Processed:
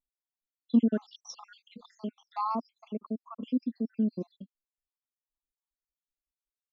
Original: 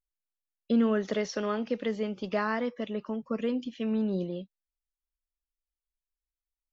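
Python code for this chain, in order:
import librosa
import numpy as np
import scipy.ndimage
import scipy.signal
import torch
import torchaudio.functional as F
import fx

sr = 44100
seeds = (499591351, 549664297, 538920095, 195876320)

y = fx.spec_dropout(x, sr, seeds[0], share_pct=77)
y = fx.graphic_eq(y, sr, hz=(125, 250, 500, 1000, 2000, 4000), db=(-6, 11, -4, 11, -11, 4))
y = y * 10.0 ** (-4.0 / 20.0)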